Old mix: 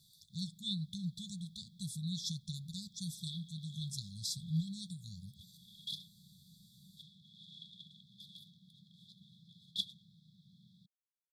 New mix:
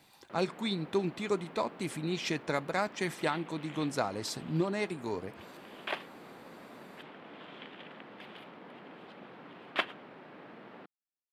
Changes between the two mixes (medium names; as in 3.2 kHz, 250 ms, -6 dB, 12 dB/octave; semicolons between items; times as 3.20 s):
second sound -7.0 dB; master: remove brick-wall FIR band-stop 200–3300 Hz